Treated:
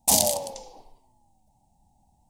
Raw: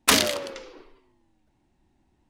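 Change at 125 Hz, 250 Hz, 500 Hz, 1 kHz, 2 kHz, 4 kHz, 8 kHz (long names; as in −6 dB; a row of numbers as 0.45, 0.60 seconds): +0.5, −5.0, 0.0, −1.5, −18.5, −5.5, +4.5 decibels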